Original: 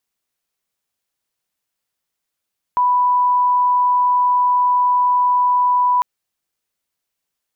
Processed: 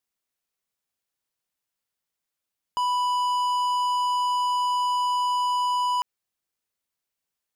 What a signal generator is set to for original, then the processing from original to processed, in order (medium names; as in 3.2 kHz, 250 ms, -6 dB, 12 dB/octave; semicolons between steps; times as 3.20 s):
tone sine 989 Hz -12 dBFS 3.25 s
peak limiter -22.5 dBFS; waveshaping leveller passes 3